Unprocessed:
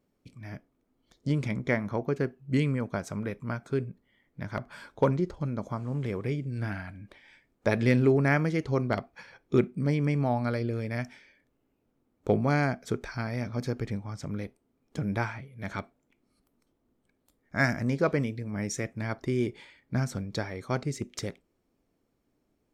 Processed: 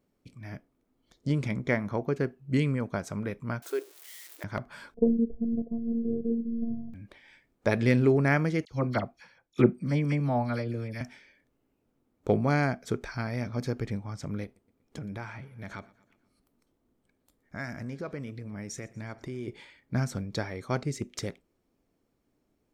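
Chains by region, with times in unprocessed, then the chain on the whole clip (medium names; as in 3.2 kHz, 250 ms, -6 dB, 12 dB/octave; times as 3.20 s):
3.62–4.44 s: zero-crossing glitches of -35.5 dBFS + brick-wall FIR high-pass 290 Hz
4.94–6.94 s: steep low-pass 530 Hz + bass shelf 270 Hz +10.5 dB + robot voice 231 Hz
8.65–11.01 s: band-stop 410 Hz, Q 6.6 + phase dispersion lows, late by 52 ms, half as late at 2.2 kHz + three bands expanded up and down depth 70%
14.44–19.48 s: compression 2.5:1, threshold -38 dBFS + feedback delay 120 ms, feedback 57%, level -22.5 dB
whole clip: none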